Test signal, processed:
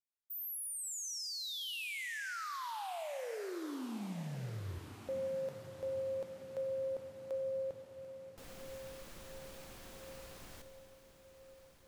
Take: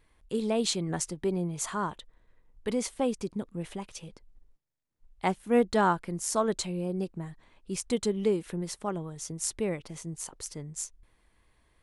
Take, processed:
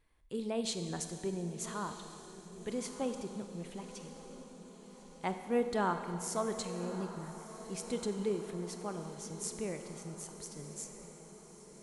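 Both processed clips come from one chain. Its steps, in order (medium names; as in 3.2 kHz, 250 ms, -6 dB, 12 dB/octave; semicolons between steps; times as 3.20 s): echo that smears into a reverb 1239 ms, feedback 58%, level -13 dB; Schroeder reverb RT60 2.4 s, combs from 31 ms, DRR 7.5 dB; trim -8 dB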